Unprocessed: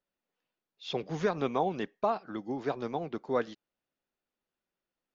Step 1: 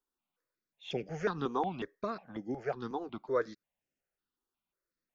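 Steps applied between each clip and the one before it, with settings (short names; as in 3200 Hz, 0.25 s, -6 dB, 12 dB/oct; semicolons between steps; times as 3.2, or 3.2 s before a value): step phaser 5.5 Hz 600–3900 Hz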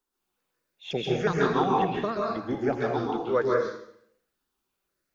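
plate-style reverb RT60 0.67 s, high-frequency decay 1×, pre-delay 0.12 s, DRR -3 dB; gain +5.5 dB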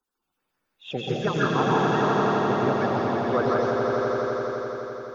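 bin magnitudes rounded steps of 30 dB; swelling echo 85 ms, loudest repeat 5, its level -6 dB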